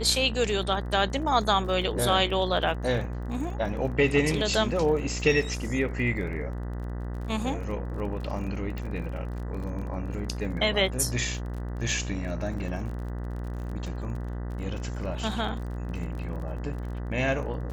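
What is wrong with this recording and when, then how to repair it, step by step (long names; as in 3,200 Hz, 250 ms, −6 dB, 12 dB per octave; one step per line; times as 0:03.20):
mains buzz 60 Hz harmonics 33 −33 dBFS
surface crackle 33 per second −37 dBFS
0:08.78: click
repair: click removal
hum removal 60 Hz, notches 33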